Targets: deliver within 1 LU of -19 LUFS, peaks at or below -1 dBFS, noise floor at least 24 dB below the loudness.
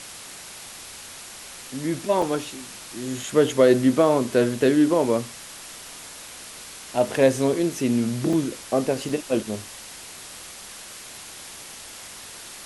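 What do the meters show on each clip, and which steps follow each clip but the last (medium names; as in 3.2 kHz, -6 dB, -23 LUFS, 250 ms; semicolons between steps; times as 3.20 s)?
dropouts 3; longest dropout 3.6 ms; noise floor -41 dBFS; noise floor target -47 dBFS; loudness -22.5 LUFS; peak level -5.0 dBFS; loudness target -19.0 LUFS
-> interpolate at 2.22/8.33/9.09 s, 3.6 ms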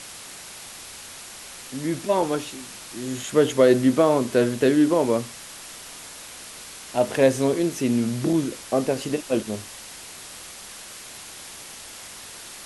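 dropouts 0; noise floor -41 dBFS; noise floor target -47 dBFS
-> noise reduction 6 dB, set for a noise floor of -41 dBFS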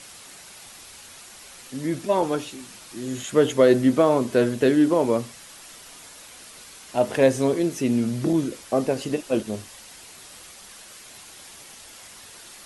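noise floor -45 dBFS; noise floor target -47 dBFS
-> noise reduction 6 dB, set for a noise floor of -45 dBFS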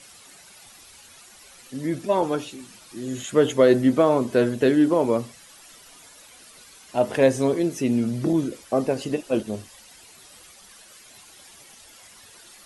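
noise floor -49 dBFS; loudness -22.5 LUFS; peak level -5.5 dBFS; loudness target -19.0 LUFS
-> trim +3.5 dB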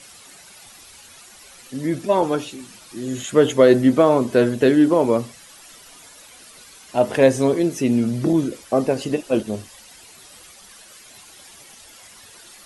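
loudness -19.0 LUFS; peak level -2.0 dBFS; noise floor -46 dBFS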